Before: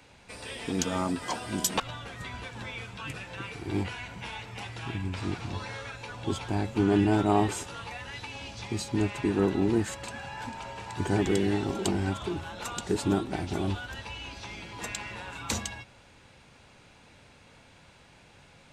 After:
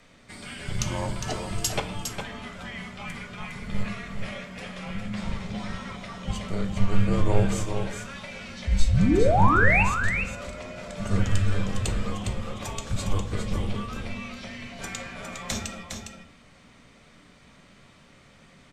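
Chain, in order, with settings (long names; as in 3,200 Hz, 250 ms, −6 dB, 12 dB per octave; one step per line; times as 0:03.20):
sound drawn into the spectrogram rise, 0:08.67–0:09.83, 220–3,100 Hz −22 dBFS
frequency shifter −300 Hz
on a send: single-tap delay 408 ms −6.5 dB
on the sum: rectangular room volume 77 cubic metres, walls mixed, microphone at 0.34 metres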